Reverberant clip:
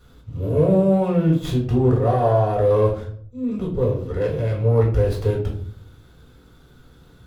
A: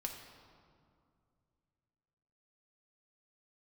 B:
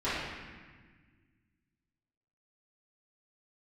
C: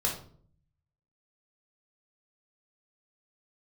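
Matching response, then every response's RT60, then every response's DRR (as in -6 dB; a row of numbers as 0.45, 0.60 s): C; 2.3, 1.5, 0.55 s; 1.5, -15.0, -2.5 dB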